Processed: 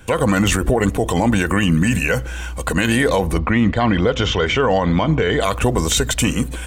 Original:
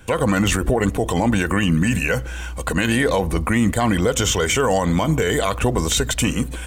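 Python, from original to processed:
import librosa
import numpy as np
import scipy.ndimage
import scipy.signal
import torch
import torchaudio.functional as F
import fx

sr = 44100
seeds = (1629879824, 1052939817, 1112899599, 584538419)

y = fx.lowpass(x, sr, hz=4400.0, slope=24, at=(3.37, 5.4), fade=0.02)
y = y * librosa.db_to_amplitude(2.0)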